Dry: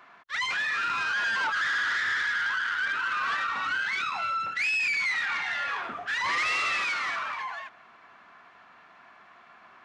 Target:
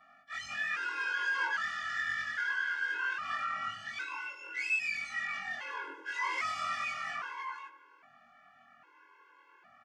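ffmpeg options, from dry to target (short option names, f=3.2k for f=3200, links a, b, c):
-filter_complex "[0:a]afftfilt=real='re':imag='-im':win_size=2048:overlap=0.75,equalizer=f=3.9k:w=6.9:g=-11,asplit=2[a][b];[b]adelay=100,lowpass=f=1k:p=1,volume=-7dB,asplit=2[c][d];[d]adelay=100,lowpass=f=1k:p=1,volume=0.44,asplit=2[e][f];[f]adelay=100,lowpass=f=1k:p=1,volume=0.44,asplit=2[g][h];[h]adelay=100,lowpass=f=1k:p=1,volume=0.44,asplit=2[i][j];[j]adelay=100,lowpass=f=1k:p=1,volume=0.44[k];[c][e][g][i][k]amix=inputs=5:normalize=0[l];[a][l]amix=inputs=2:normalize=0,afreqshift=21,afftfilt=real='re*gt(sin(2*PI*0.62*pts/sr)*(1-2*mod(floor(b*sr/1024/280),2)),0)':imag='im*gt(sin(2*PI*0.62*pts/sr)*(1-2*mod(floor(b*sr/1024/280),2)),0)':win_size=1024:overlap=0.75"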